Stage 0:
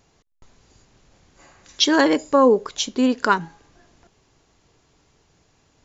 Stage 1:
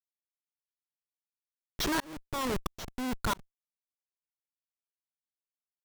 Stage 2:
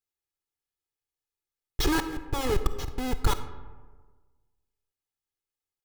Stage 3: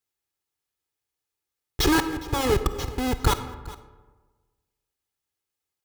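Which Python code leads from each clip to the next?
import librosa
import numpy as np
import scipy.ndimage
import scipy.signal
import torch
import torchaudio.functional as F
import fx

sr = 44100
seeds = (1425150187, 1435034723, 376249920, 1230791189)

y1 = fx.curve_eq(x, sr, hz=(110.0, 450.0, 1200.0, 2700.0, 4200.0), db=(0, -16, -2, -15, -7))
y1 = fx.schmitt(y1, sr, flips_db=-31.5)
y1 = fx.tremolo_shape(y1, sr, shape='saw_up', hz=1.5, depth_pct=100)
y1 = y1 * librosa.db_to_amplitude(5.0)
y2 = fx.low_shelf(y1, sr, hz=280.0, db=9.0)
y2 = y2 + 0.79 * np.pad(y2, (int(2.4 * sr / 1000.0), 0))[:len(y2)]
y2 = fx.rev_freeverb(y2, sr, rt60_s=1.4, hf_ratio=0.45, predelay_ms=10, drr_db=10.5)
y3 = scipy.signal.sosfilt(scipy.signal.butter(2, 44.0, 'highpass', fs=sr, output='sos'), y2)
y3 = y3 + 10.0 ** (-19.5 / 20.0) * np.pad(y3, (int(410 * sr / 1000.0), 0))[:len(y3)]
y3 = y3 * librosa.db_to_amplitude(5.5)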